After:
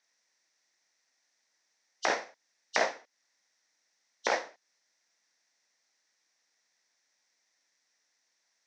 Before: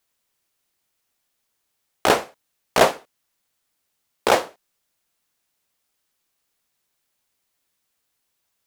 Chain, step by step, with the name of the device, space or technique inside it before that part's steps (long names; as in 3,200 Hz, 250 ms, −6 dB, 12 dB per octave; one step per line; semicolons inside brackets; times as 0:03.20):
hearing aid with frequency lowering (hearing-aid frequency compression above 2,800 Hz 1.5 to 1; downward compressor 2.5 to 1, threshold −30 dBFS, peak gain reduction 13.5 dB; loudspeaker in its box 330–5,900 Hz, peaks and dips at 400 Hz −6 dB, 1,200 Hz −5 dB, 1,900 Hz +9 dB, 3,000 Hz −7 dB, 5,800 Hz +10 dB)